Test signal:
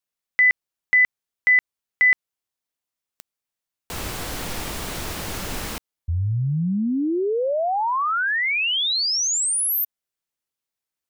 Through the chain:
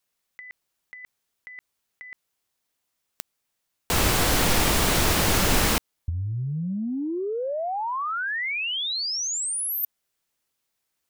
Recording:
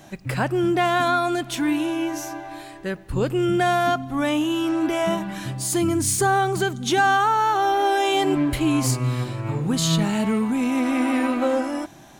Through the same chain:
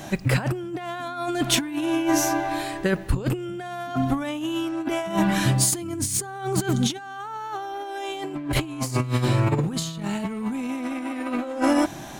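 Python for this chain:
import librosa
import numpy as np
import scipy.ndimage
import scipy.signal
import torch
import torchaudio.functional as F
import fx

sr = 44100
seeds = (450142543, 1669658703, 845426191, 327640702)

y = fx.over_compress(x, sr, threshold_db=-27.0, ratio=-0.5)
y = y * 10.0 ** (3.0 / 20.0)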